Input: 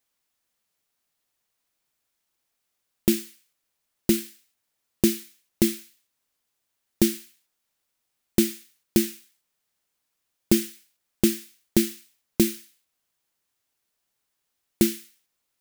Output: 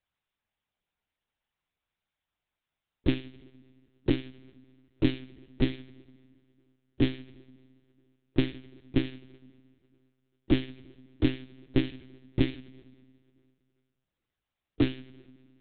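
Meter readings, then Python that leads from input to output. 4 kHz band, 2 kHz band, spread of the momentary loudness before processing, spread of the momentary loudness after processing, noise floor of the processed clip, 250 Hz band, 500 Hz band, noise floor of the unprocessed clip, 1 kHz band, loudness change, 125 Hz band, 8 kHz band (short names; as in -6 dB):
-5.5 dB, -1.5 dB, 15 LU, 17 LU, under -85 dBFS, -5.0 dB, -5.5 dB, -79 dBFS, -1.5 dB, -5.5 dB, +2.0 dB, under -40 dB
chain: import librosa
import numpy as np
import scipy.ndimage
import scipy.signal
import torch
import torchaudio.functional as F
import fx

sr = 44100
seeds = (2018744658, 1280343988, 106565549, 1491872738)

y = fx.spec_quant(x, sr, step_db=15)
y = fx.rev_plate(y, sr, seeds[0], rt60_s=2.2, hf_ratio=0.8, predelay_ms=0, drr_db=16.5)
y = fx.lpc_monotone(y, sr, seeds[1], pitch_hz=130.0, order=10)
y = y * 10.0 ** (-3.0 / 20.0)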